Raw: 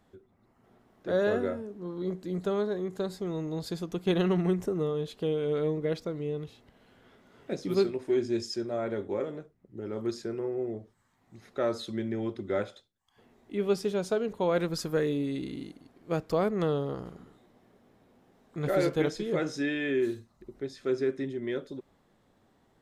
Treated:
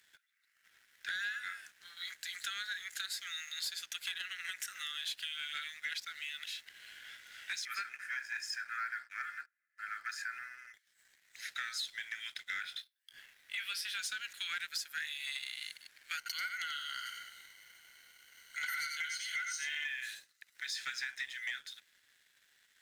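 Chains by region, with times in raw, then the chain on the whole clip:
0:07.65–0:10.74: high shelf with overshoot 2,500 Hz −12.5 dB, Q 3 + notch filter 1,900 Hz, Q 6.7 + comb filter 1.6 ms, depth 41%
0:12.61–0:13.99: parametric band 7,000 Hz −12 dB 0.4 octaves + double-tracking delay 22 ms −8 dB
0:16.17–0:19.85: EQ curve with evenly spaced ripples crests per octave 1.9, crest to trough 17 dB + single-tap delay 88 ms −6.5 dB
whole clip: Butterworth high-pass 1,500 Hz 72 dB per octave; downward compressor 12 to 1, threshold −51 dBFS; leveller curve on the samples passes 2; level +8.5 dB

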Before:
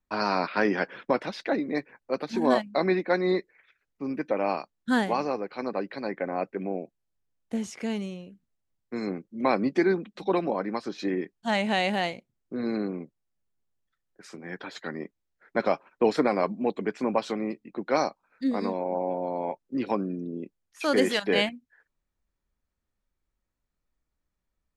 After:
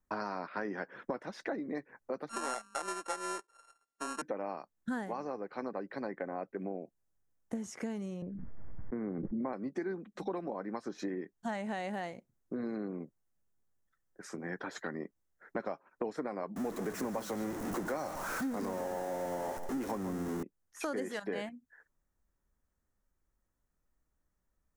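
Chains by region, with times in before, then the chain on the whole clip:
0:02.29–0:04.22: samples sorted by size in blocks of 32 samples + high-pass filter 490 Hz + bad sample-rate conversion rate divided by 2×, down none, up filtered
0:08.22–0:09.53: Butterworth low-pass 2,300 Hz 72 dB per octave + spectral tilt −2 dB per octave + background raised ahead of every attack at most 26 dB per second
0:16.56–0:20.43: converter with a step at zero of −26 dBFS + single-tap delay 146 ms −12.5 dB
whole clip: flat-topped bell 3,300 Hz −9.5 dB 1.3 octaves; downward compressor 5 to 1, threshold −37 dBFS; level +1.5 dB

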